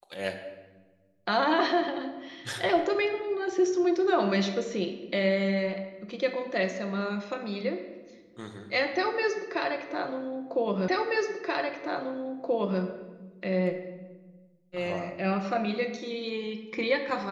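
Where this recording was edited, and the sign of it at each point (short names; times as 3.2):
10.88 repeat of the last 1.93 s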